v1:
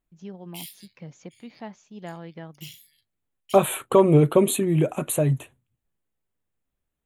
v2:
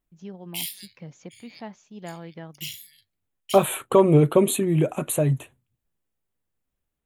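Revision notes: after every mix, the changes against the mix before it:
background +8.5 dB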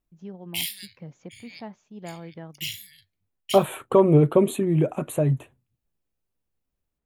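background +10.5 dB; master: add high shelf 2400 Hz -10.5 dB

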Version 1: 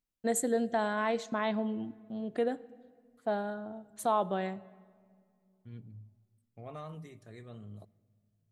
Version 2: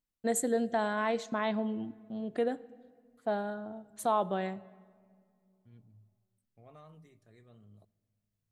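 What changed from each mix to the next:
second voice -10.5 dB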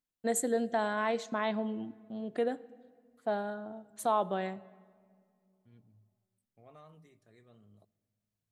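master: add low shelf 98 Hz -10.5 dB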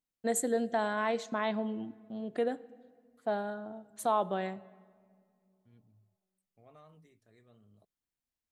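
second voice: send off

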